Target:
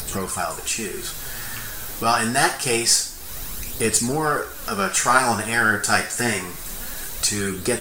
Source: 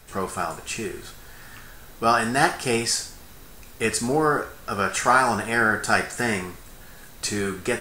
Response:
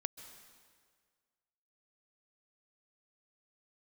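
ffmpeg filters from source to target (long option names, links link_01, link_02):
-filter_complex "[0:a]highshelf=frequency=4100:gain=10.5,acompressor=mode=upward:threshold=-22dB:ratio=2.5,asplit=2[link_01][link_02];[link_02]aeval=exprs='clip(val(0),-1,0.0668)':channel_layout=same,volume=-8dB[link_03];[link_01][link_03]amix=inputs=2:normalize=0,flanger=delay=0.2:depth=9.7:regen=39:speed=0.26:shape=sinusoidal,volume=1.5dB"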